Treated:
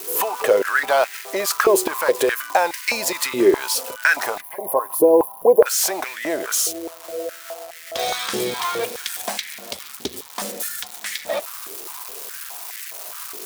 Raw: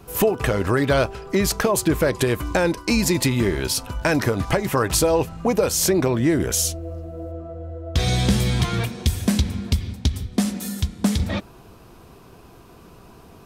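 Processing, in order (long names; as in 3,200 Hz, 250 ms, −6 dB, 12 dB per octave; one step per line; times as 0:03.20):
spike at every zero crossing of −22 dBFS
gain on a spectral selection 0:04.41–0:05.66, 1,100–9,500 Hz −23 dB
high-pass on a step sequencer 4.8 Hz 390–1,900 Hz
level −1 dB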